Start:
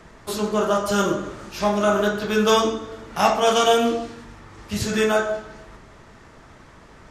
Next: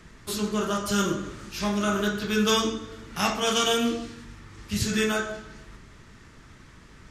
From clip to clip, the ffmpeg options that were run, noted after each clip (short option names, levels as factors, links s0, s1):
-af "equalizer=f=690:t=o:w=1.5:g=-12.5"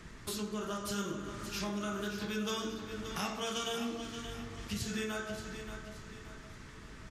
-filter_complex "[0:a]acompressor=threshold=0.0141:ratio=3,asplit=2[s0][s1];[s1]aecho=0:1:577|1154|1731|2308:0.335|0.137|0.0563|0.0231[s2];[s0][s2]amix=inputs=2:normalize=0,volume=0.891"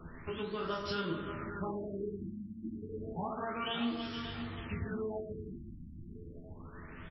-filter_complex "[0:a]asplit=2[s0][s1];[s1]adelay=12,volume=0.668[s2];[s0][s2]amix=inputs=2:normalize=0,afftfilt=real='re*lt(b*sr/1024,330*pow(5700/330,0.5+0.5*sin(2*PI*0.3*pts/sr)))':imag='im*lt(b*sr/1024,330*pow(5700/330,0.5+0.5*sin(2*PI*0.3*pts/sr)))':win_size=1024:overlap=0.75,volume=1.12"